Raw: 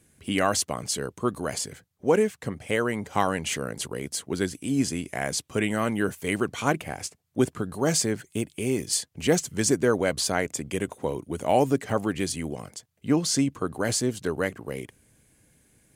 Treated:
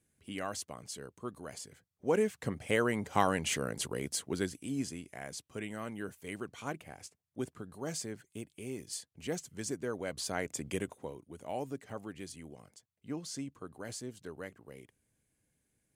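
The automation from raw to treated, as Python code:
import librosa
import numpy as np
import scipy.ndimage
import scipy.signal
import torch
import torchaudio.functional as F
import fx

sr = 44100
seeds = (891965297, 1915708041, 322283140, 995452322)

y = fx.gain(x, sr, db=fx.line((1.69, -15.0), (2.41, -4.0), (4.14, -4.0), (5.14, -15.0), (9.95, -15.0), (10.72, -5.5), (11.19, -17.0)))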